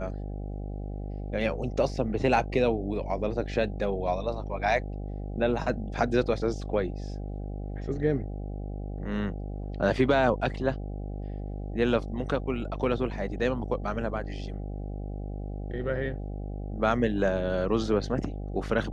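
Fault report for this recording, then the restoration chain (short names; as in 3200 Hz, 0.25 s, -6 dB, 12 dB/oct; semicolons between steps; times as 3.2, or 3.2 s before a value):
buzz 50 Hz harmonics 16 -35 dBFS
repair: de-hum 50 Hz, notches 16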